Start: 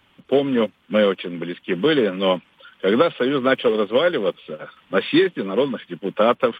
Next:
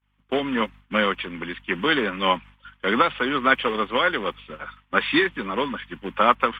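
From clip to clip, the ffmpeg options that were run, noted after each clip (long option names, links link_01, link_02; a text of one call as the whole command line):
ffmpeg -i in.wav -af "equalizer=frequency=125:width_type=o:width=1:gain=-6,equalizer=frequency=500:width_type=o:width=1:gain=-8,equalizer=frequency=1000:width_type=o:width=1:gain=8,equalizer=frequency=2000:width_type=o:width=1:gain=6,aeval=exprs='val(0)+0.00447*(sin(2*PI*50*n/s)+sin(2*PI*2*50*n/s)/2+sin(2*PI*3*50*n/s)/3+sin(2*PI*4*50*n/s)/4+sin(2*PI*5*50*n/s)/5)':channel_layout=same,agate=range=-33dB:threshold=-34dB:ratio=3:detection=peak,volume=-2.5dB" out.wav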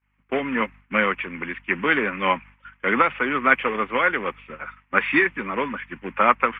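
ffmpeg -i in.wav -af "highshelf=frequency=2900:width_type=q:width=3:gain=-7.5,volume=-1dB" out.wav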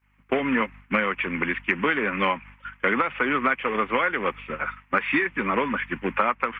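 ffmpeg -i in.wav -af "acompressor=threshold=-25dB:ratio=12,volume=6dB" out.wav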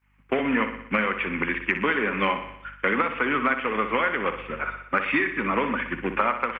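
ffmpeg -i in.wav -af "aecho=1:1:61|122|183|244|305|366|427:0.335|0.191|0.109|0.062|0.0354|0.0202|0.0115,volume=-1dB" out.wav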